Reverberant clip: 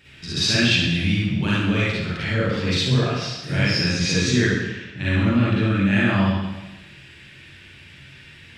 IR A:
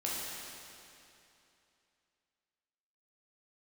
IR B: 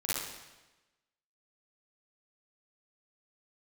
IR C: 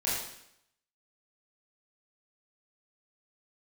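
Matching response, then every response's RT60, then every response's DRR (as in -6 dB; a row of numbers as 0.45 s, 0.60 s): B; 2.8 s, 1.1 s, 0.75 s; -6.0 dB, -9.0 dB, -8.5 dB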